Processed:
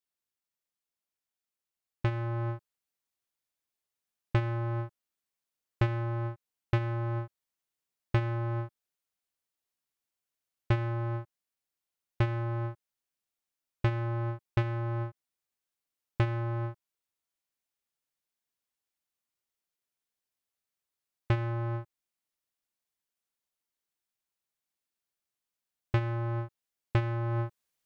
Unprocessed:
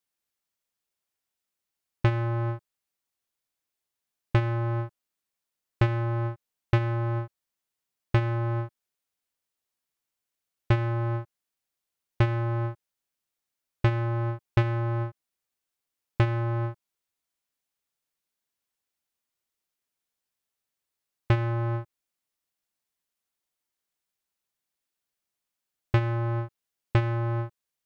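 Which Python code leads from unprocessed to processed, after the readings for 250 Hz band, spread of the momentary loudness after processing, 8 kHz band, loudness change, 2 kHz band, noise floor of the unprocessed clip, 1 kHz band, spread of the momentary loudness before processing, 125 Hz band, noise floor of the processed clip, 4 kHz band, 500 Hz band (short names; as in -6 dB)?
-4.5 dB, 9 LU, n/a, -4.5 dB, -4.5 dB, under -85 dBFS, -4.5 dB, 10 LU, -4.5 dB, under -85 dBFS, -4.5 dB, -4.5 dB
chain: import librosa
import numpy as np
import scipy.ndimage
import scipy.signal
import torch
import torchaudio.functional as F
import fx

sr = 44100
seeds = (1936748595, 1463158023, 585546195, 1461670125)

y = fx.rider(x, sr, range_db=10, speed_s=0.5)
y = F.gain(torch.from_numpy(y), -4.5).numpy()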